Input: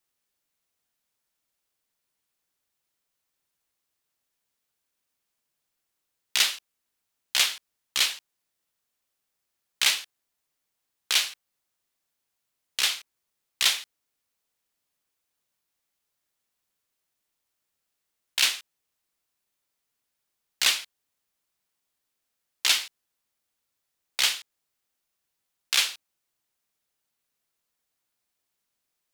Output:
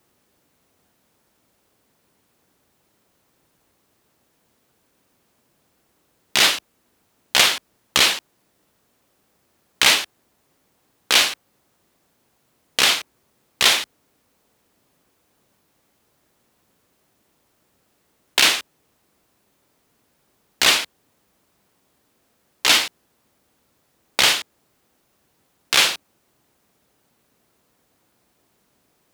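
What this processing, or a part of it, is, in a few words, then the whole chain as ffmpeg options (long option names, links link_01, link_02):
mastering chain: -af "highpass=45,equalizer=frequency=260:width_type=o:width=1.8:gain=3.5,acompressor=threshold=-26dB:ratio=1.5,tiltshelf=frequency=1300:gain=6.5,alimiter=level_in=19.5dB:limit=-1dB:release=50:level=0:latency=1,volume=-1dB"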